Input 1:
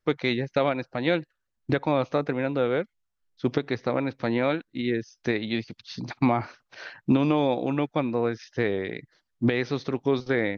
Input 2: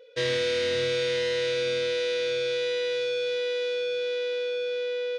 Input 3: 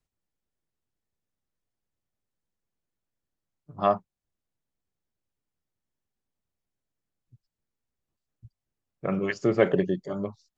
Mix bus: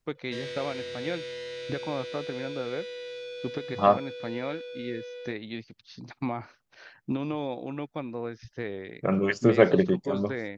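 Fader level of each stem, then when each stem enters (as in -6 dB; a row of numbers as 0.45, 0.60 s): -9.0, -11.0, +2.5 dB; 0.00, 0.15, 0.00 s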